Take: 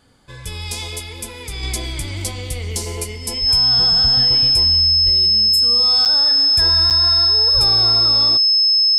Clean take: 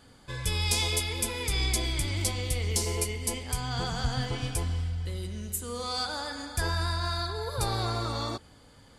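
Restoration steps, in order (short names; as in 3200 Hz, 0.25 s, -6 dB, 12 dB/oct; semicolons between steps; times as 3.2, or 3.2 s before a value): notch 5200 Hz, Q 30; de-plosive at 3.4/5.04/7.53; interpolate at 6.05/6.9, 7.6 ms; gain 0 dB, from 1.63 s -4 dB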